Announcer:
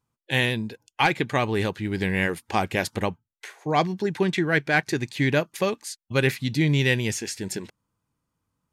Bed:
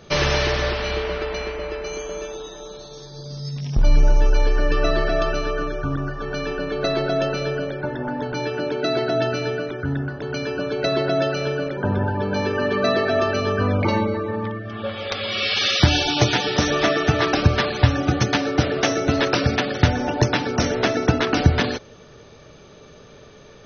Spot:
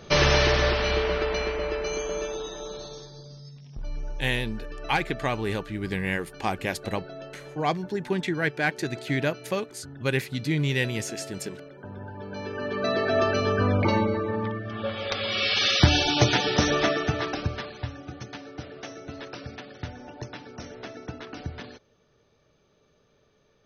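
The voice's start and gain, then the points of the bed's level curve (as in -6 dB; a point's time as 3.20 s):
3.90 s, -4.0 dB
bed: 2.87 s 0 dB
3.64 s -19 dB
11.89 s -19 dB
13.21 s -2.5 dB
16.71 s -2.5 dB
18.01 s -19.5 dB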